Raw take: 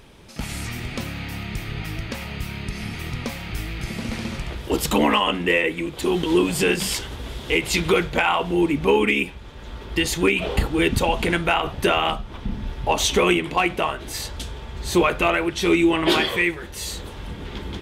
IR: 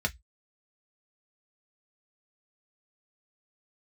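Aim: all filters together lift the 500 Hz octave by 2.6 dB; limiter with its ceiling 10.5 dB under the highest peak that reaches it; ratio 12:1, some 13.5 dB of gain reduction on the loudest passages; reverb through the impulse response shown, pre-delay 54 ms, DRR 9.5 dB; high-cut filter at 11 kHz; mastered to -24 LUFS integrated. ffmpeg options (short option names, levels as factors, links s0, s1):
-filter_complex "[0:a]lowpass=11000,equalizer=f=500:t=o:g=3.5,acompressor=threshold=0.0562:ratio=12,alimiter=limit=0.0631:level=0:latency=1,asplit=2[s0][s1];[1:a]atrim=start_sample=2205,adelay=54[s2];[s1][s2]afir=irnorm=-1:irlink=0,volume=0.15[s3];[s0][s3]amix=inputs=2:normalize=0,volume=2.82"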